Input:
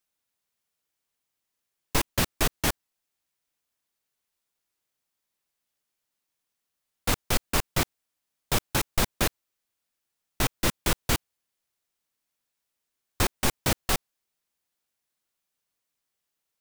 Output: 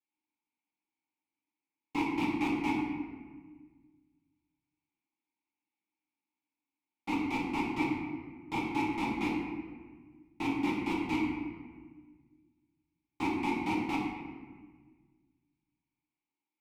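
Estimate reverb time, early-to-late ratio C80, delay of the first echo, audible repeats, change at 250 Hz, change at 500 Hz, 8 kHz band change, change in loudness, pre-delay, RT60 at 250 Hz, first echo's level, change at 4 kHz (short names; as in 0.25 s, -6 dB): 1.5 s, 3.0 dB, none, none, +4.0 dB, -6.5 dB, -25.0 dB, -6.0 dB, 4 ms, 2.0 s, none, -14.5 dB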